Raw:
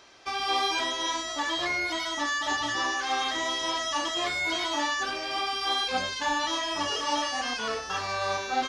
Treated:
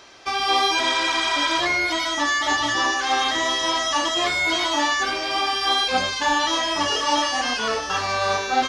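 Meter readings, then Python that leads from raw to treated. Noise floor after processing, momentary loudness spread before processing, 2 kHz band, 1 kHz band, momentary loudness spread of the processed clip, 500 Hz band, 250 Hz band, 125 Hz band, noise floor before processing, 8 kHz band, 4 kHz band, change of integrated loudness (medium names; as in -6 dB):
-28 dBFS, 3 LU, +7.5 dB, +7.0 dB, 3 LU, +7.0 dB, +7.0 dB, +7.0 dB, -35 dBFS, +6.5 dB, +7.0 dB, +7.5 dB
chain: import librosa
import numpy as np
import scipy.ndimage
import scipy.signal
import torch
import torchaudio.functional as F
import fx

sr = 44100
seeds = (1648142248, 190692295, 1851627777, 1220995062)

p1 = fx.spec_repair(x, sr, seeds[0], start_s=0.85, length_s=0.72, low_hz=840.0, high_hz=9800.0, source='before')
p2 = p1 + fx.echo_single(p1, sr, ms=646, db=-16.5, dry=0)
y = p2 * 10.0 ** (7.0 / 20.0)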